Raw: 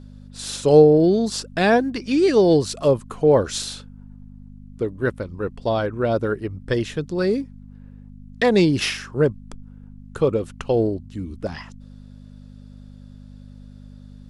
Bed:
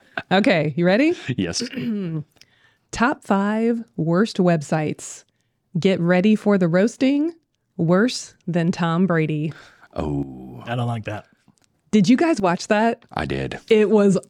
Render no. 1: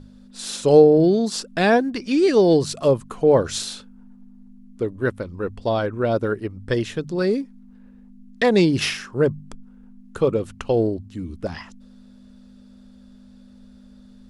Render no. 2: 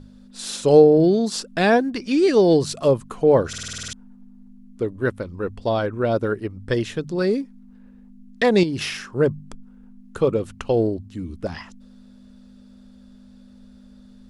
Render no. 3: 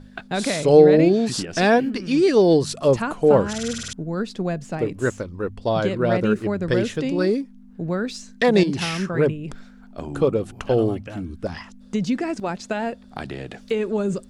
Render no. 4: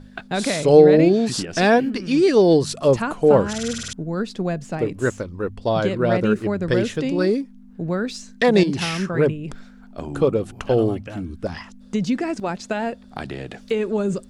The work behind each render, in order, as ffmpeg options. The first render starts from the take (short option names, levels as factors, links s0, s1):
-af "bandreject=f=50:t=h:w=4,bandreject=f=100:t=h:w=4,bandreject=f=150:t=h:w=4"
-filter_complex "[0:a]asettb=1/sr,asplit=3[s0][s1][s2];[s0]atrim=end=8.634[s3];[s1]atrim=start=8.63:end=9.08,asetpts=PTS-STARTPTS,afade=t=in:d=0.004:c=qsin,afade=t=out:st=0.446:d=0.004:c=qsin,acompressor=threshold=0.0562:ratio=2.5:attack=3.2:release=140:knee=1:detection=peak[s4];[s2]atrim=start=9.076[s5];[s3][s4]acrossfade=d=0.004:c1=hsin:c2=qsin[s6];[s6][s5]acrossfade=d=0.004:c1=qsin:c2=hsin,asplit=10[s7][s8][s9][s10][s11][s12][s13][s14][s15][s16];[s7]atrim=end=3.532[s17];[s8]atrim=start=3.478:end=3.532[s18];[s9]atrim=start=3.478:end=3.532[s19];[s10]atrim=start=3.478:end=3.532[s20];[s11]atrim=start=3.478:end=3.532[s21];[s12]atrim=start=3.478:end=3.532[s22];[s13]atrim=start=3.478:end=3.532[s23];[s14]atrim=start=3.478:end=3.532[s24];[s15]atrim=start=3.478:end=3.532[s25];[s16]atrim=start=3.928[s26];[s17][s18]acrossfade=d=0.004:c1=hsin:c2=hsin[s27];[s27][s19]acrossfade=d=0.004:c1=hsin:c2=hsin[s28];[s28][s20]acrossfade=d=0.004:c1=hsin:c2=hsin[s29];[s29][s21]acrossfade=d=0.004:c1=hsin:c2=hsin[s30];[s30][s22]acrossfade=d=0.004:c1=hsin:c2=hsin[s31];[s31][s23]acrossfade=d=0.004:c1=hsin:c2=hsin[s32];[s32][s24]acrossfade=d=0.004:c1=hsin:c2=hsin[s33];[s33][s25]acrossfade=d=0.004:c1=hsin:c2=hsin[s34];[s34][s26]acrossfade=d=0.004:c1=hsin:c2=hsin"
-filter_complex "[1:a]volume=0.398[s0];[0:a][s0]amix=inputs=2:normalize=0"
-af "volume=1.12,alimiter=limit=0.891:level=0:latency=1"